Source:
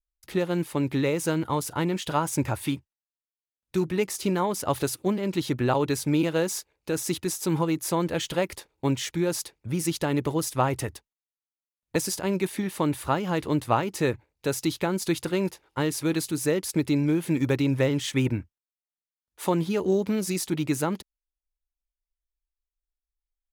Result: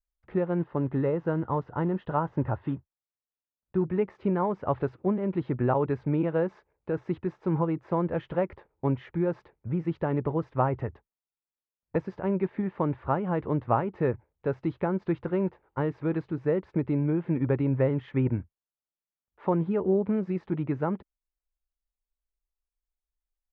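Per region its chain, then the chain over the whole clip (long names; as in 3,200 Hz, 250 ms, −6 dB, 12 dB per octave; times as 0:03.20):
0:00.59–0:03.84: one scale factor per block 5 bits + moving average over 4 samples + notch filter 2,300 Hz, Q 5.1
whole clip: Bessel low-pass filter 1,200 Hz, order 4; parametric band 300 Hz −5 dB 0.31 octaves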